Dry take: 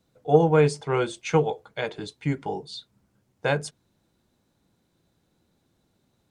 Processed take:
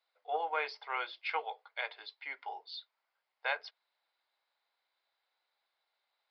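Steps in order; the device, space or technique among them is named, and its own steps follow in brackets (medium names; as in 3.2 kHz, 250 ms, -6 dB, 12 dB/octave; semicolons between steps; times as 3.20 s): musical greeting card (resampled via 11.025 kHz; high-pass 740 Hz 24 dB/octave; peaking EQ 2.1 kHz +6.5 dB 0.21 oct); trim -6 dB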